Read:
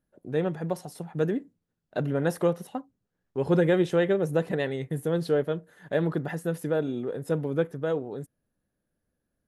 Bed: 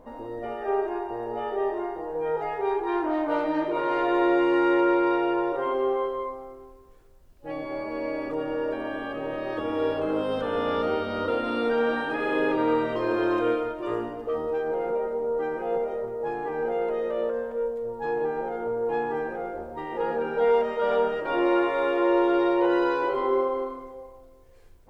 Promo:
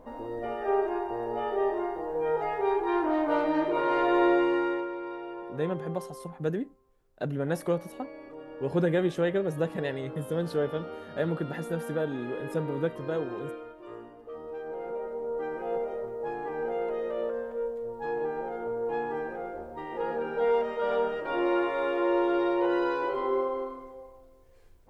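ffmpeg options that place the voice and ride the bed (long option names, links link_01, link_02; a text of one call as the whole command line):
ffmpeg -i stem1.wav -i stem2.wav -filter_complex "[0:a]adelay=5250,volume=-3.5dB[link_01];[1:a]volume=10dB,afade=type=out:start_time=4.26:duration=0.63:silence=0.199526,afade=type=in:start_time=14.22:duration=1.46:silence=0.298538[link_02];[link_01][link_02]amix=inputs=2:normalize=0" out.wav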